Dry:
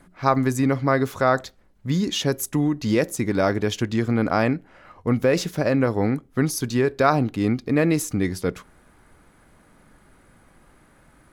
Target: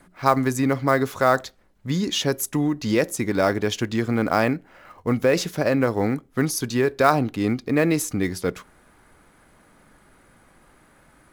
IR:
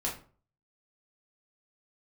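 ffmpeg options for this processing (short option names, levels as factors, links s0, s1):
-filter_complex "[0:a]lowshelf=f=250:g=-5,acrossover=split=880|3100[s0][s1][s2];[s1]acrusher=bits=4:mode=log:mix=0:aa=0.000001[s3];[s0][s3][s2]amix=inputs=3:normalize=0,volume=1.19"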